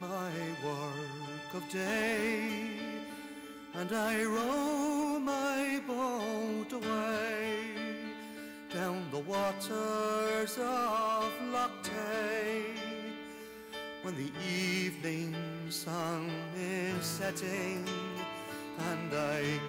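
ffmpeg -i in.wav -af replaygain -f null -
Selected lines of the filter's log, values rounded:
track_gain = +16.6 dB
track_peak = 0.031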